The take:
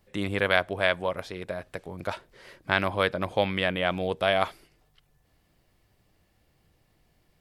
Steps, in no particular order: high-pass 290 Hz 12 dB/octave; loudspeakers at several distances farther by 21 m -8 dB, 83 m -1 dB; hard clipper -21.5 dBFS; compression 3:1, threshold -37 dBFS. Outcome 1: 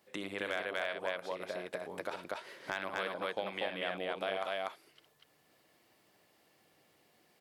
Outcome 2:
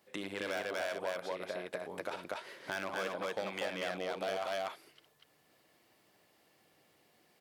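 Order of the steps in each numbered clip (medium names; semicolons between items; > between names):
loudspeakers at several distances > compression > high-pass > hard clipper; hard clipper > loudspeakers at several distances > compression > high-pass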